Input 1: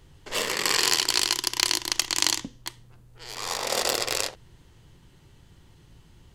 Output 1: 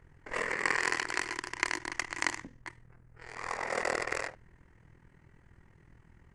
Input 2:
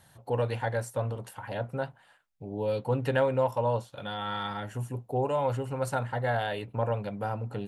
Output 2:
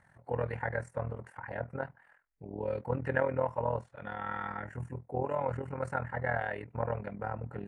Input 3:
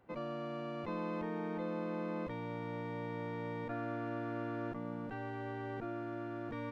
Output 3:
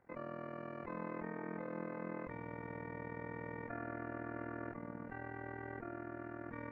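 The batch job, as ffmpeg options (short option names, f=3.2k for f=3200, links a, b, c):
-af "highshelf=f=2.6k:t=q:w=3:g=-9.5,tremolo=f=41:d=0.788,volume=-2dB" -ar 22050 -c:a aac -b:a 96k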